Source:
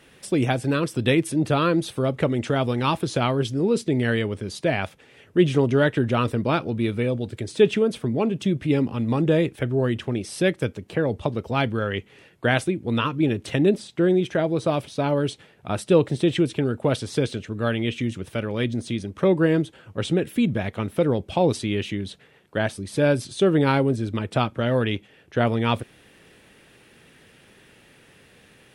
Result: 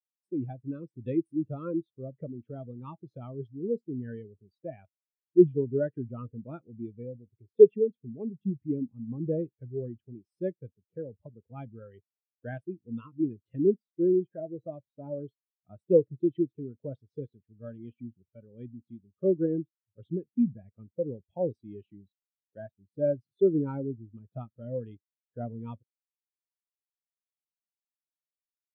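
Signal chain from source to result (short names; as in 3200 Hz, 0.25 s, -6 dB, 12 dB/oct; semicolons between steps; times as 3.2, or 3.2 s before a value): spectral expander 2.5:1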